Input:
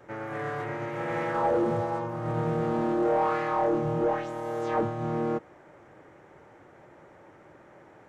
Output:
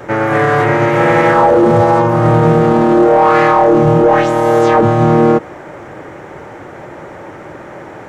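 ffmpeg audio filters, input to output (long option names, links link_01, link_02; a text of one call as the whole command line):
ffmpeg -i in.wav -af "alimiter=level_in=23dB:limit=-1dB:release=50:level=0:latency=1,volume=-1dB" out.wav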